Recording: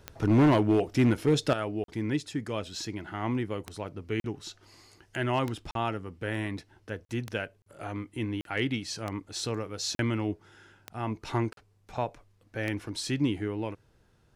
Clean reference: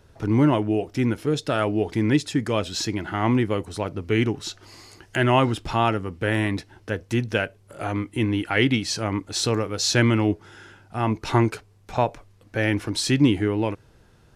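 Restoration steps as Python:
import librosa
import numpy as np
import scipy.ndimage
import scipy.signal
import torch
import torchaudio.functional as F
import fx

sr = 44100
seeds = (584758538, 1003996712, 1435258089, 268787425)

y = fx.fix_declip(x, sr, threshold_db=-17.0)
y = fx.fix_declick_ar(y, sr, threshold=10.0)
y = fx.fix_interpolate(y, sr, at_s=(1.84, 4.2, 5.71, 7.05, 7.62, 8.41, 9.95, 11.53), length_ms=42.0)
y = fx.fix_level(y, sr, at_s=1.53, step_db=9.5)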